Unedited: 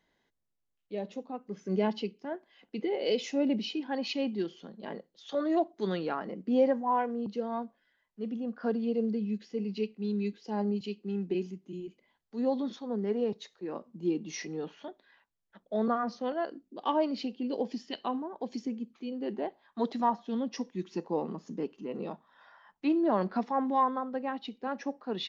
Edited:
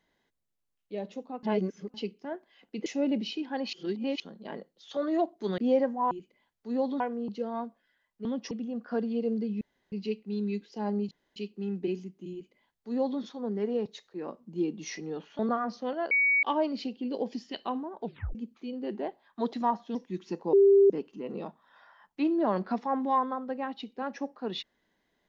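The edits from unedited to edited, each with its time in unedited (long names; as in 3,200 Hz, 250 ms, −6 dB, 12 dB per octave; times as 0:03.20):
0:01.43–0:01.94: reverse
0:02.86–0:03.24: remove
0:04.11–0:04.58: reverse
0:05.96–0:06.45: remove
0:09.33–0:09.64: fill with room tone
0:10.83: splice in room tone 0.25 s
0:11.79–0:12.68: duplicate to 0:06.98
0:14.86–0:15.78: remove
0:16.50–0:16.82: beep over 2,250 Hz −21 dBFS
0:18.41: tape stop 0.33 s
0:20.34–0:20.60: move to 0:08.23
0:21.18–0:21.55: beep over 396 Hz −15.5 dBFS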